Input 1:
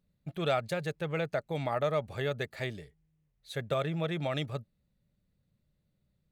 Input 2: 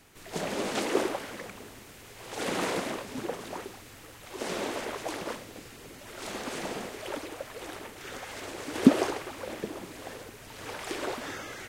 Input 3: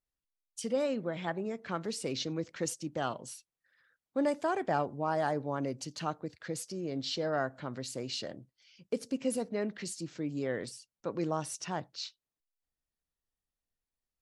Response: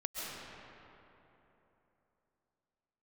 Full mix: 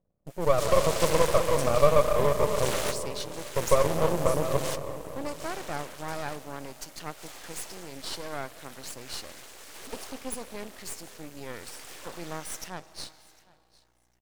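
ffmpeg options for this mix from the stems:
-filter_complex "[0:a]lowpass=frequency=540:width_type=q:width=4.7,volume=-4dB,asplit=3[link_01][link_02][link_03];[link_02]volume=-3.5dB[link_04];[1:a]highpass=550,aeval=exprs='clip(val(0),-1,0.02)':channel_layout=same,adelay=250,volume=-0.5dB,asplit=2[link_05][link_06];[link_06]volume=-9.5dB[link_07];[2:a]lowshelf=frequency=240:gain=-10,aeval=exprs='val(0)+0.000447*(sin(2*PI*60*n/s)+sin(2*PI*2*60*n/s)/2+sin(2*PI*3*60*n/s)/3+sin(2*PI*4*60*n/s)/4+sin(2*PI*5*60*n/s)/5)':channel_layout=same,adelay=1000,volume=-6dB,asplit=3[link_08][link_09][link_10];[link_09]volume=-17.5dB[link_11];[link_10]volume=-23dB[link_12];[link_03]apad=whole_len=526280[link_13];[link_05][link_13]sidechaingate=range=-33dB:threshold=-52dB:ratio=16:detection=peak[link_14];[3:a]atrim=start_sample=2205[link_15];[link_04][link_11]amix=inputs=2:normalize=0[link_16];[link_16][link_15]afir=irnorm=-1:irlink=0[link_17];[link_07][link_12]amix=inputs=2:normalize=0,aecho=0:1:753|1506|2259:1|0.18|0.0324[link_18];[link_01][link_14][link_08][link_17][link_18]amix=inputs=5:normalize=0,highshelf=frequency=4500:gain=10,dynaudnorm=framelen=210:gausssize=5:maxgain=5dB,aeval=exprs='max(val(0),0)':channel_layout=same"

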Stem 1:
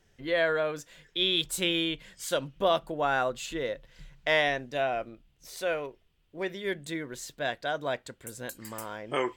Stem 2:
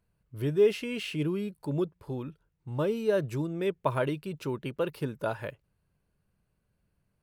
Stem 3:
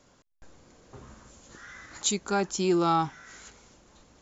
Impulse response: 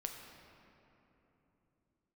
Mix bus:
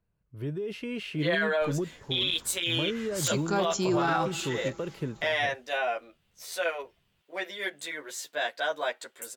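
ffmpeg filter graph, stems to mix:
-filter_complex "[0:a]highpass=570,asplit=2[link_01][link_02];[link_02]adelay=11.3,afreqshift=0.29[link_03];[link_01][link_03]amix=inputs=2:normalize=1,adelay=950,volume=2.5dB[link_04];[1:a]alimiter=limit=-23dB:level=0:latency=1:release=43,acrossover=split=340|3000[link_05][link_06][link_07];[link_06]acompressor=threshold=-35dB:ratio=6[link_08];[link_05][link_08][link_07]amix=inputs=3:normalize=0,highshelf=frequency=4800:gain=-11.5,volume=-3dB[link_09];[2:a]aeval=exprs='(mod(5.31*val(0)+1,2)-1)/5.31':channel_layout=same,adelay=1200,volume=-6dB,asplit=2[link_10][link_11];[link_11]volume=-12dB[link_12];[3:a]atrim=start_sample=2205[link_13];[link_12][link_13]afir=irnorm=-1:irlink=0[link_14];[link_04][link_09][link_10][link_14]amix=inputs=4:normalize=0,dynaudnorm=framelen=110:gausssize=13:maxgain=4dB,alimiter=limit=-18dB:level=0:latency=1:release=20"

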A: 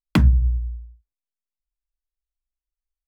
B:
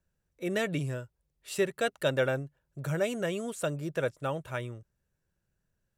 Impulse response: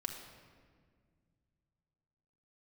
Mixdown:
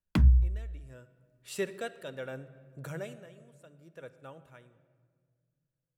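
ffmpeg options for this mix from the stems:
-filter_complex "[0:a]lowshelf=frequency=81:gain=11.5,volume=-11.5dB[link_01];[1:a]tremolo=f=0.71:d=0.73,volume=-6dB,afade=type=in:start_time=0.81:duration=0.35:silence=0.298538,afade=type=out:start_time=2.79:duration=0.37:silence=0.237137,asplit=3[link_02][link_03][link_04];[link_03]volume=-5dB[link_05];[link_04]apad=whole_len=135451[link_06];[link_01][link_06]sidechaincompress=threshold=-59dB:ratio=8:attack=16:release=390[link_07];[2:a]atrim=start_sample=2205[link_08];[link_05][link_08]afir=irnorm=-1:irlink=0[link_09];[link_07][link_02][link_09]amix=inputs=3:normalize=0,bandreject=frequency=50:width_type=h:width=6,bandreject=frequency=100:width_type=h:width=6,bandreject=frequency=150:width_type=h:width=6"

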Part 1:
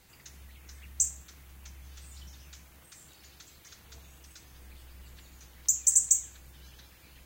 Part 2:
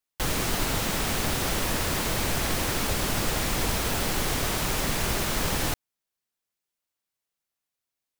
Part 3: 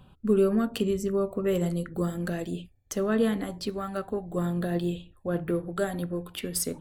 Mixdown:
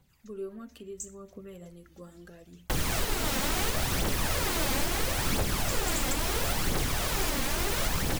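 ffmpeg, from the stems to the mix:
ffmpeg -i stem1.wav -i stem2.wav -i stem3.wav -filter_complex "[0:a]volume=-13.5dB[link_01];[1:a]adelay=2500,volume=-1dB[link_02];[2:a]volume=-18.5dB,asplit=2[link_03][link_04];[link_04]apad=whole_len=320126[link_05];[link_01][link_05]sidechaincompress=threshold=-46dB:ratio=8:attack=6.4:release=107[link_06];[link_06][link_02][link_03]amix=inputs=3:normalize=0,aphaser=in_gain=1:out_gain=1:delay=3.9:decay=0.47:speed=0.74:type=triangular,alimiter=limit=-17dB:level=0:latency=1:release=362" out.wav

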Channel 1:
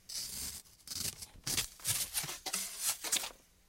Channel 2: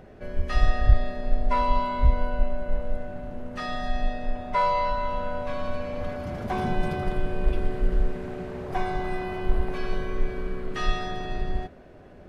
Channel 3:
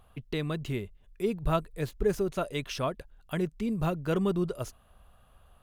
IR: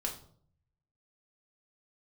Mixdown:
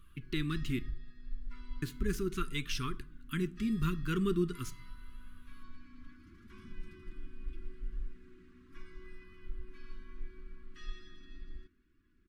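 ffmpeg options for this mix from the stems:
-filter_complex "[1:a]volume=-17.5dB[link_01];[2:a]volume=1.5dB,asplit=3[link_02][link_03][link_04];[link_02]atrim=end=0.79,asetpts=PTS-STARTPTS,afade=type=out:start_time=0.786:duration=0.004:curve=hsin[link_05];[link_03]atrim=start=0.79:end=1.82,asetpts=PTS-STARTPTS,volume=0[link_06];[link_04]atrim=start=1.82,asetpts=PTS-STARTPTS,afade=type=in:duration=0.004:curve=hsin[link_07];[link_05][link_06][link_07]concat=n=3:v=0:a=1,asplit=2[link_08][link_09];[link_09]volume=-12dB[link_10];[link_01]aecho=1:1:3.6:0.48,alimiter=level_in=1.5dB:limit=-24dB:level=0:latency=1:release=435,volume=-1.5dB,volume=0dB[link_11];[3:a]atrim=start_sample=2205[link_12];[link_10][link_12]afir=irnorm=-1:irlink=0[link_13];[link_08][link_11][link_13]amix=inputs=3:normalize=0,flanger=delay=1.6:depth=2.3:regen=57:speed=0.75:shape=triangular,asuperstop=centerf=650:order=8:qfactor=0.81"

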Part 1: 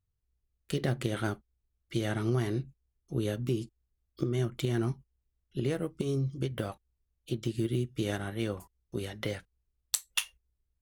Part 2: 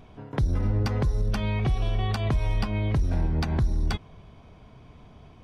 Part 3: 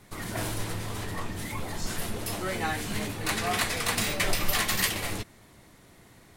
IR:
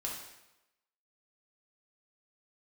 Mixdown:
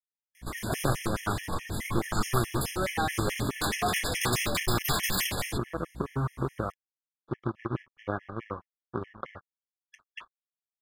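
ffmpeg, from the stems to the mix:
-filter_complex "[0:a]acrusher=bits=2:mode=log:mix=0:aa=0.000001,aeval=exprs='sgn(val(0))*max(abs(val(0))-0.00398,0)':channel_layout=same,lowpass=frequency=1200:width_type=q:width=5.1,volume=1dB,asplit=2[link_01][link_02];[1:a]aeval=exprs='(mod(29.9*val(0)+1,2)-1)/29.9':channel_layout=same,adelay=1000,volume=-14dB[link_03];[2:a]aeval=exprs='val(0)+0.00708*(sin(2*PI*60*n/s)+sin(2*PI*2*60*n/s)/2+sin(2*PI*3*60*n/s)/3+sin(2*PI*4*60*n/s)/4+sin(2*PI*5*60*n/s)/5)':channel_layout=same,volume=23.5dB,asoftclip=hard,volume=-23.5dB,adelay=350,volume=3dB[link_04];[link_02]apad=whole_len=283974[link_05];[link_03][link_05]sidechaingate=range=-33dB:threshold=-49dB:ratio=16:detection=peak[link_06];[link_01][link_06][link_04]amix=inputs=3:normalize=0,afftfilt=real='re*gt(sin(2*PI*4.7*pts/sr)*(1-2*mod(floor(b*sr/1024/1700),2)),0)':imag='im*gt(sin(2*PI*4.7*pts/sr)*(1-2*mod(floor(b*sr/1024/1700),2)),0)':win_size=1024:overlap=0.75"

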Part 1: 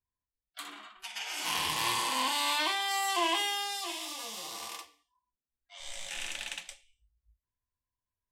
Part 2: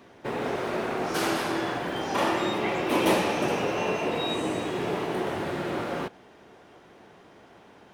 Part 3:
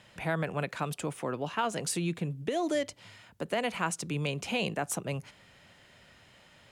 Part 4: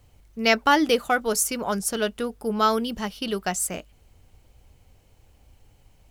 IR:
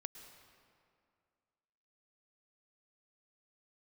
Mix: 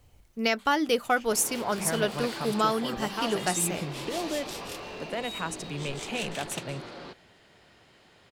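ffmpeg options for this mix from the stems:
-filter_complex "[0:a]aeval=exprs='0.0501*(abs(mod(val(0)/0.0501+3,4)-2)-1)':channel_layout=same,acrossover=split=1400[link_01][link_02];[link_01]aeval=exprs='val(0)*(1-1/2+1/2*cos(2*PI*5.4*n/s))':channel_layout=same[link_03];[link_02]aeval=exprs='val(0)*(1-1/2-1/2*cos(2*PI*5.4*n/s))':channel_layout=same[link_04];[link_03][link_04]amix=inputs=2:normalize=0,volume=2.5dB,asplit=2[link_05][link_06];[link_06]volume=-15dB[link_07];[1:a]lowpass=frequency=4500:width_type=q:width=5.4,asoftclip=type=tanh:threshold=-25.5dB,adelay=1050,volume=-10.5dB[link_08];[2:a]adelay=1600,volume=-2.5dB[link_09];[3:a]bandreject=frequency=50:width_type=h:width=6,bandreject=frequency=100:width_type=h:width=6,bandreject=frequency=150:width_type=h:width=6,bandreject=frequency=200:width_type=h:width=6,alimiter=limit=-12dB:level=0:latency=1:release=435,volume=-1.5dB,asplit=2[link_10][link_11];[link_11]apad=whole_len=366485[link_12];[link_05][link_12]sidechaincompress=threshold=-42dB:ratio=8:attack=16:release=362[link_13];[4:a]atrim=start_sample=2205[link_14];[link_07][link_14]afir=irnorm=-1:irlink=0[link_15];[link_13][link_08][link_09][link_10][link_15]amix=inputs=5:normalize=0"

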